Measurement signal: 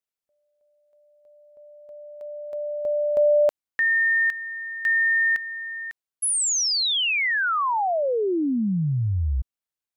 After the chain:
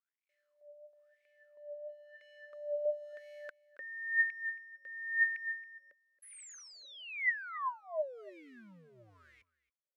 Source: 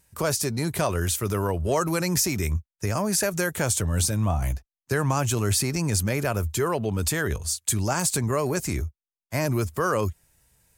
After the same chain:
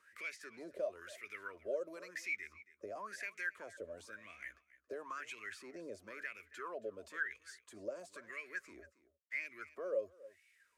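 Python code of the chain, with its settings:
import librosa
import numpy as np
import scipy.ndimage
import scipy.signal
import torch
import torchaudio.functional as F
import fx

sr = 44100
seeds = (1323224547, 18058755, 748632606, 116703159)

p1 = fx.law_mismatch(x, sr, coded='mu')
p2 = fx.fixed_phaser(p1, sr, hz=340.0, stages=4)
p3 = fx.wah_lfo(p2, sr, hz=0.98, low_hz=550.0, high_hz=2300.0, q=12.0)
p4 = p3 + fx.echo_single(p3, sr, ms=275, db=-21.5, dry=0)
p5 = fx.band_squash(p4, sr, depth_pct=40)
y = p5 * librosa.db_to_amplitude(2.5)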